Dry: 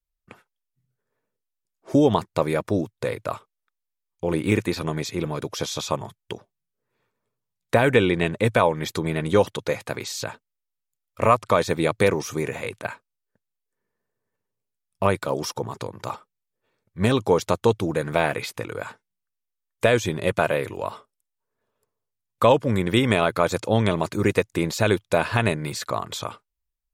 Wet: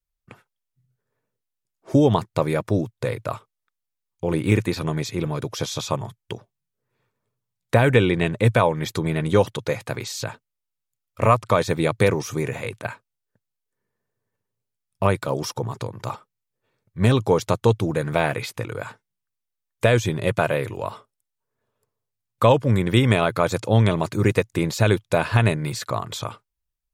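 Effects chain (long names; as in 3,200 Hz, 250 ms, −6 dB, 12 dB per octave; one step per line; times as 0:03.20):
parametric band 120 Hz +7.5 dB 0.73 octaves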